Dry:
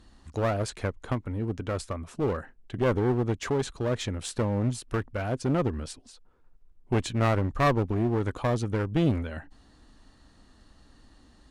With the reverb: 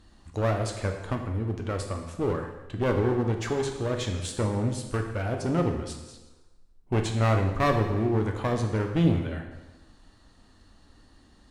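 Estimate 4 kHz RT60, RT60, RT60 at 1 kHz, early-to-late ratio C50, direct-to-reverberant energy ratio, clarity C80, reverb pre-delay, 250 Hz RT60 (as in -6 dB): 1.0 s, 1.1 s, 1.1 s, 6.5 dB, 3.5 dB, 8.0 dB, 6 ms, 1.1 s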